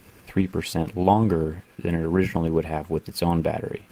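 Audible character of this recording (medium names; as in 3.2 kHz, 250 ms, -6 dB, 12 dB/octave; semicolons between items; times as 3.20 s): tremolo saw up 9.7 Hz, depth 35%; a quantiser's noise floor 12-bit, dither none; Opus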